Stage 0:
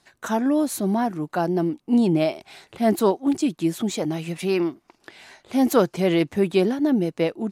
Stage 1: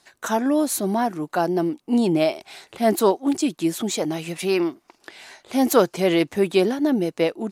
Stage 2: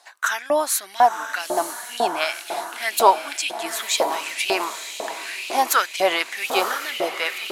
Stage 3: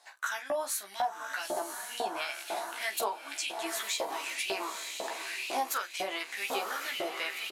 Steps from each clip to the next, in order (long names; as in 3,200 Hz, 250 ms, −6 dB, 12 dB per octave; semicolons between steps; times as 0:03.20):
bass and treble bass −7 dB, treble +3 dB; level +2.5 dB
feedback delay with all-pass diffusion 950 ms, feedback 53%, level −7.5 dB; auto-filter high-pass saw up 2 Hz 660–3,000 Hz; level +3.5 dB
downward compressor 5 to 1, threshold −24 dBFS, peak gain reduction 14.5 dB; on a send: ambience of single reflections 15 ms −3 dB, 46 ms −13 dB; on the sum: level −8 dB